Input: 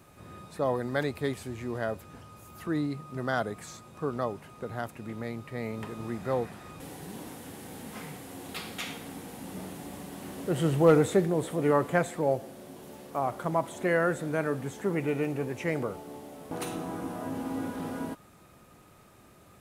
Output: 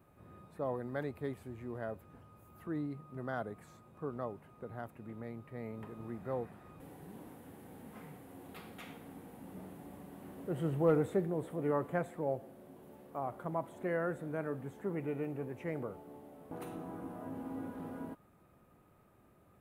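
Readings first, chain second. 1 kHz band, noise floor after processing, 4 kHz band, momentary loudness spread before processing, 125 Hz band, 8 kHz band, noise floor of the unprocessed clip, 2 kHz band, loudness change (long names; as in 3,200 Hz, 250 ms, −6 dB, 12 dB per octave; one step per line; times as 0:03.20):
−9.5 dB, −65 dBFS, below −15 dB, 17 LU, −8.0 dB, below −15 dB, −56 dBFS, −12.0 dB, −8.5 dB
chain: parametric band 5,700 Hz −15 dB 2.1 octaves
level −8 dB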